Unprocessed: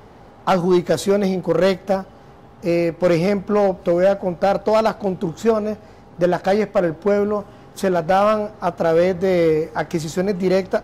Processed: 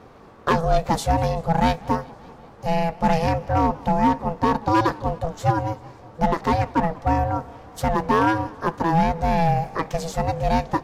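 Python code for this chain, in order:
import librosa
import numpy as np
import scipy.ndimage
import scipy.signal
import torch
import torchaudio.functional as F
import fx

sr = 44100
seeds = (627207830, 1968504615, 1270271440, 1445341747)

y = x * np.sin(2.0 * np.pi * 330.0 * np.arange(len(x)) / sr)
y = fx.echo_warbled(y, sr, ms=191, feedback_pct=71, rate_hz=2.8, cents=162, wet_db=-23.5)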